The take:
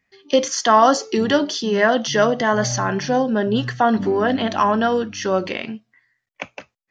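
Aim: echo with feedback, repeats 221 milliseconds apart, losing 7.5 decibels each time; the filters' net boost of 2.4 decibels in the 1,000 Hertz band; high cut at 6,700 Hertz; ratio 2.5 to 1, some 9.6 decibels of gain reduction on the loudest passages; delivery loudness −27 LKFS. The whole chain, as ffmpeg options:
ffmpeg -i in.wav -af "lowpass=6700,equalizer=frequency=1000:width_type=o:gain=3,acompressor=threshold=-21dB:ratio=2.5,aecho=1:1:221|442|663|884|1105:0.422|0.177|0.0744|0.0312|0.0131,volume=-4dB" out.wav

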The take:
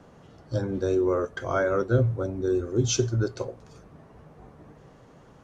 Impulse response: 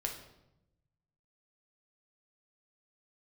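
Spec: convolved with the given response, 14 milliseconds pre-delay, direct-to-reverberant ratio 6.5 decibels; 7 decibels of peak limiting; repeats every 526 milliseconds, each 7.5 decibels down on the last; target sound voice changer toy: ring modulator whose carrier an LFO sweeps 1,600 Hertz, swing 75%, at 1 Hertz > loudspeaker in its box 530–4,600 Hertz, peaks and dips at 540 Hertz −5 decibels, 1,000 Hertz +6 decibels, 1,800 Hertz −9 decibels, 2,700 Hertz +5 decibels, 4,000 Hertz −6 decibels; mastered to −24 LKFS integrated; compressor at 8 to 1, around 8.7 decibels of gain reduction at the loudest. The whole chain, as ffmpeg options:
-filter_complex "[0:a]acompressor=threshold=-26dB:ratio=8,alimiter=level_in=1dB:limit=-24dB:level=0:latency=1,volume=-1dB,aecho=1:1:526|1052|1578|2104|2630:0.422|0.177|0.0744|0.0312|0.0131,asplit=2[link_01][link_02];[1:a]atrim=start_sample=2205,adelay=14[link_03];[link_02][link_03]afir=irnorm=-1:irlink=0,volume=-8dB[link_04];[link_01][link_04]amix=inputs=2:normalize=0,aeval=exprs='val(0)*sin(2*PI*1600*n/s+1600*0.75/1*sin(2*PI*1*n/s))':channel_layout=same,highpass=530,equalizer=frequency=540:width_type=q:width=4:gain=-5,equalizer=frequency=1000:width_type=q:width=4:gain=6,equalizer=frequency=1800:width_type=q:width=4:gain=-9,equalizer=frequency=2700:width_type=q:width=4:gain=5,equalizer=frequency=4000:width_type=q:width=4:gain=-6,lowpass=frequency=4600:width=0.5412,lowpass=frequency=4600:width=1.3066,volume=9dB"

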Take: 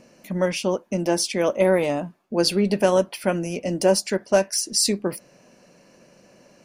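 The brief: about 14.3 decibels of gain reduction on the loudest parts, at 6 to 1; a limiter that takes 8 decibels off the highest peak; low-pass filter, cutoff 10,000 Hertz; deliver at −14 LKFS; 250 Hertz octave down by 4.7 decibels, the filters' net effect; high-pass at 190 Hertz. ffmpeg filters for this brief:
ffmpeg -i in.wav -af "highpass=190,lowpass=10000,equalizer=frequency=250:width_type=o:gain=-5,acompressor=threshold=-30dB:ratio=6,volume=22dB,alimiter=limit=-3.5dB:level=0:latency=1" out.wav

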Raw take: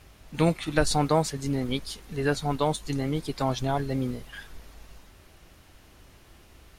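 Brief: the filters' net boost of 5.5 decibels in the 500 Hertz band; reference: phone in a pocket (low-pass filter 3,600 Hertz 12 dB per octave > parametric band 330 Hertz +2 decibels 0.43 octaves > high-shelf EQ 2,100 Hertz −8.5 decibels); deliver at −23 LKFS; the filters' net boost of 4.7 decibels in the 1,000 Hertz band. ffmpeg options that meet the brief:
ffmpeg -i in.wav -af "lowpass=3600,equalizer=frequency=330:width_type=o:width=0.43:gain=2,equalizer=frequency=500:width_type=o:gain=5.5,equalizer=frequency=1000:width_type=o:gain=5.5,highshelf=frequency=2100:gain=-8.5,volume=1.5dB" out.wav

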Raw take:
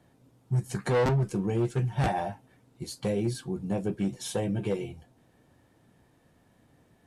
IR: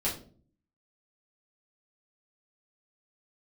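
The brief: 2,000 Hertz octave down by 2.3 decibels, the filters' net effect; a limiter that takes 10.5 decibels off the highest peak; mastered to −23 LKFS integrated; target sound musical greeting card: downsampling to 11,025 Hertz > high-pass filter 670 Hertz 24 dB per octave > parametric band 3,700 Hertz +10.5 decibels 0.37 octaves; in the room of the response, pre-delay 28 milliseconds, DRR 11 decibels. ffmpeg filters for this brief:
-filter_complex "[0:a]equalizer=frequency=2000:width_type=o:gain=-3.5,alimiter=level_in=5.5dB:limit=-24dB:level=0:latency=1,volume=-5.5dB,asplit=2[link_01][link_02];[1:a]atrim=start_sample=2205,adelay=28[link_03];[link_02][link_03]afir=irnorm=-1:irlink=0,volume=-17.5dB[link_04];[link_01][link_04]amix=inputs=2:normalize=0,aresample=11025,aresample=44100,highpass=frequency=670:width=0.5412,highpass=frequency=670:width=1.3066,equalizer=frequency=3700:width_type=o:width=0.37:gain=10.5,volume=21.5dB"

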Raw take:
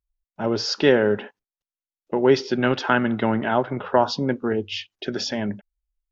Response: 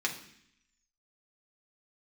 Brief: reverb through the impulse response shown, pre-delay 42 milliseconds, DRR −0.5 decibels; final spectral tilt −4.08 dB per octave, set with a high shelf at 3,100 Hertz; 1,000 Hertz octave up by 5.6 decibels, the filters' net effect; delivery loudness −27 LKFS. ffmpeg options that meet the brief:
-filter_complex "[0:a]equalizer=frequency=1000:width_type=o:gain=8,highshelf=frequency=3100:gain=-8.5,asplit=2[link_01][link_02];[1:a]atrim=start_sample=2205,adelay=42[link_03];[link_02][link_03]afir=irnorm=-1:irlink=0,volume=-6dB[link_04];[link_01][link_04]amix=inputs=2:normalize=0,volume=-8.5dB"

